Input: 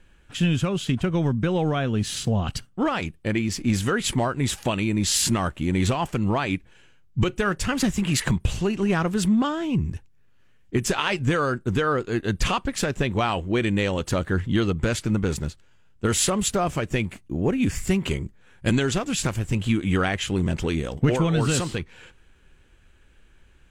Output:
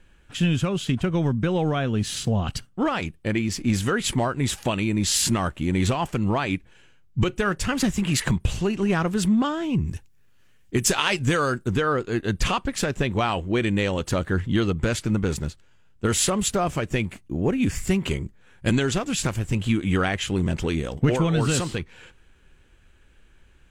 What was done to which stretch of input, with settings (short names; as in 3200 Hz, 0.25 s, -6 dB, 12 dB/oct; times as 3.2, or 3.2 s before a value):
9.87–11.68 high shelf 4000 Hz +9.5 dB